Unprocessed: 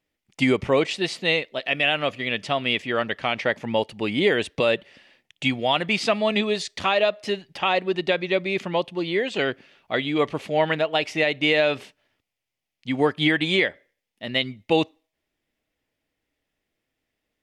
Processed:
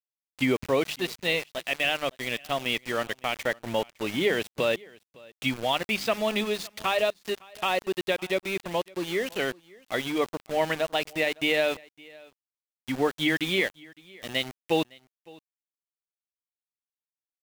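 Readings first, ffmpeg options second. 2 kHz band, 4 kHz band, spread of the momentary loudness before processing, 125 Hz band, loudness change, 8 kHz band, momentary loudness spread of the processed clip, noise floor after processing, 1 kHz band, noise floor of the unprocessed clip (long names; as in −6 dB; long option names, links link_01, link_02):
−4.5 dB, −4.5 dB, 6 LU, −6.5 dB, −4.5 dB, +1.5 dB, 6 LU, below −85 dBFS, −4.5 dB, −84 dBFS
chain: -af "bandreject=frequency=50:width_type=h:width=6,bandreject=frequency=100:width_type=h:width=6,bandreject=frequency=150:width_type=h:width=6,bandreject=frequency=200:width_type=h:width=6,aeval=exprs='val(0)*gte(abs(val(0)),0.0355)':channel_layout=same,aecho=1:1:560:0.0631,volume=-4.5dB"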